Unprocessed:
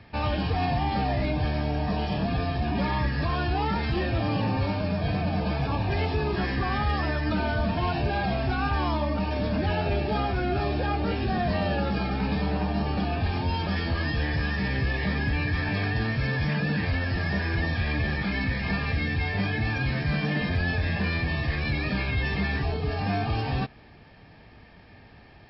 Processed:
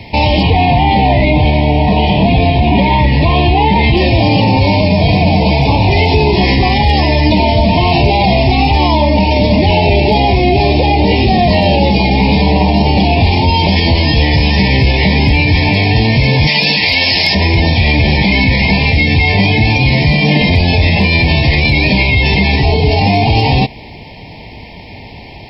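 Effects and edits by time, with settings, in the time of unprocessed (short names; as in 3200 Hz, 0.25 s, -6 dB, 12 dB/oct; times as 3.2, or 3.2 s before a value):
0.43–3.97 LPF 3700 Hz 24 dB/oct
16.47–17.35 tilt +4 dB/oct
whole clip: elliptic band-stop 990–2000 Hz, stop band 40 dB; tilt shelf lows -3 dB, about 870 Hz; maximiser +22.5 dB; gain -1 dB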